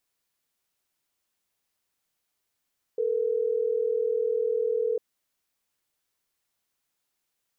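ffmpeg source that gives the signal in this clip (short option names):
-f lavfi -i "aevalsrc='0.0501*(sin(2*PI*440*t)+sin(2*PI*480*t))*clip(min(mod(t,6),2-mod(t,6))/0.005,0,1)':d=3.12:s=44100"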